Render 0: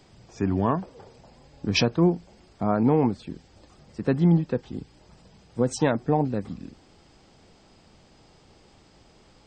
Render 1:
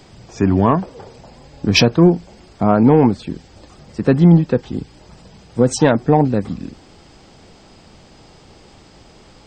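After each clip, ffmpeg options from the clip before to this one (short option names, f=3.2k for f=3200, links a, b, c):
-af "acontrast=89,volume=3dB"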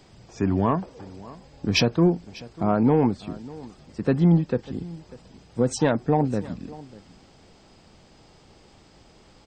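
-af "aecho=1:1:595:0.1,volume=-8dB"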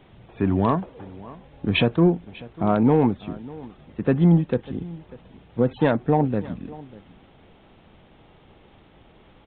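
-af "volume=1.5dB" -ar 8000 -c:a adpcm_g726 -b:a 40k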